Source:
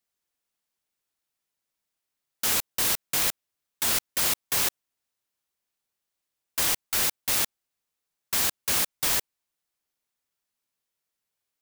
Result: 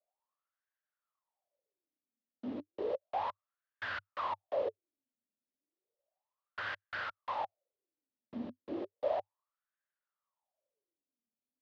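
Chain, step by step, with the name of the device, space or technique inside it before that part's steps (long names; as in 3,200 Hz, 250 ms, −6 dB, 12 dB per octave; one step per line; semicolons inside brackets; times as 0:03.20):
wah-wah guitar rig (LFO wah 0.33 Hz 230–1,600 Hz, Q 10; tube saturation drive 39 dB, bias 0.2; loudspeaker in its box 78–3,800 Hz, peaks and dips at 99 Hz +8 dB, 150 Hz −9 dB, 580 Hz +9 dB, 1,500 Hz −7 dB, 2,300 Hz −5 dB)
level +12 dB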